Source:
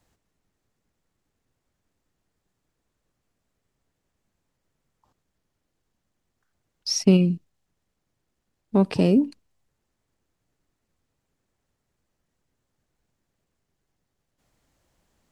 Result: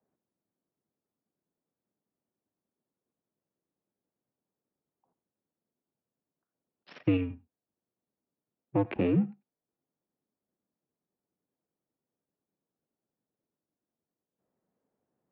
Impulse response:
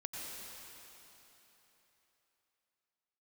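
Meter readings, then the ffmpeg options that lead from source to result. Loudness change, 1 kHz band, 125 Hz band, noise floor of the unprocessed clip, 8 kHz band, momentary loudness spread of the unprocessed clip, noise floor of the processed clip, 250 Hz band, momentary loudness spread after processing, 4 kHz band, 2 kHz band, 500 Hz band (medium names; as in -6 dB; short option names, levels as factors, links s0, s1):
-8.5 dB, -5.5 dB, -9.0 dB, -79 dBFS, under -40 dB, 14 LU, under -85 dBFS, -9.0 dB, 8 LU, under -20 dB, -4.0 dB, -8.5 dB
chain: -filter_complex "[0:a]adynamicsmooth=sensitivity=4:basefreq=820,asplit=2[s0][s1];[1:a]atrim=start_sample=2205,atrim=end_sample=4410[s2];[s1][s2]afir=irnorm=-1:irlink=0,volume=0.841[s3];[s0][s3]amix=inputs=2:normalize=0,highpass=f=270:t=q:w=0.5412,highpass=f=270:t=q:w=1.307,lowpass=f=3000:t=q:w=0.5176,lowpass=f=3000:t=q:w=0.7071,lowpass=f=3000:t=q:w=1.932,afreqshift=-85,volume=0.447"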